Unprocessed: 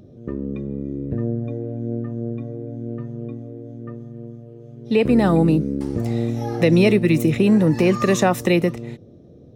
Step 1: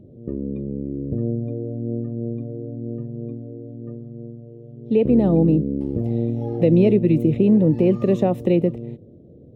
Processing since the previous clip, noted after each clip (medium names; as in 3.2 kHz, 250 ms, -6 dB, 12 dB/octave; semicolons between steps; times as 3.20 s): FFT filter 540 Hz 0 dB, 1.5 kHz -21 dB, 3 kHz -11 dB, 5.8 kHz -25 dB, 13 kHz -20 dB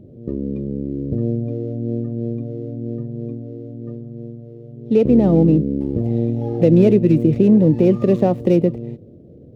median filter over 15 samples; trim +3 dB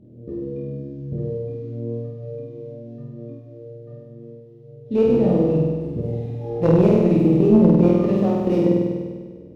chorus voices 2, 0.27 Hz, delay 25 ms, depth 2.7 ms; Chebyshev shaper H 2 -11 dB, 3 -22 dB, 4 -22 dB, 6 -38 dB, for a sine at -4.5 dBFS; flutter echo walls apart 8.5 m, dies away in 1.5 s; trim -1.5 dB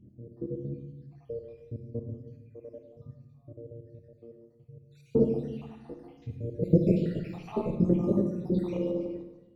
random holes in the spectrogram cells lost 77%; phase shifter stages 2, 0.64 Hz, lowest notch 120–2800 Hz; reverberation RT60 0.95 s, pre-delay 34 ms, DRR 4 dB; trim -4.5 dB